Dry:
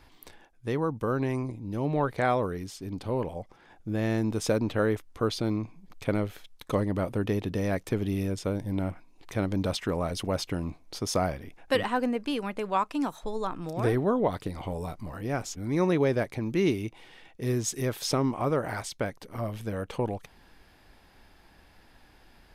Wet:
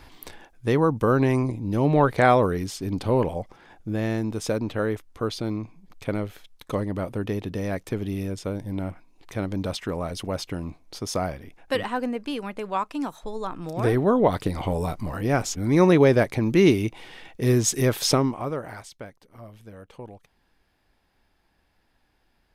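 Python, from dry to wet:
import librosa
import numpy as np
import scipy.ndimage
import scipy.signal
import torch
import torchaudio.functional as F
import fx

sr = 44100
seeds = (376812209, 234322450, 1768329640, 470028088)

y = fx.gain(x, sr, db=fx.line((3.24, 8.0), (4.29, 0.0), (13.4, 0.0), (14.44, 8.0), (18.1, 8.0), (18.38, -1.0), (19.21, -11.0)))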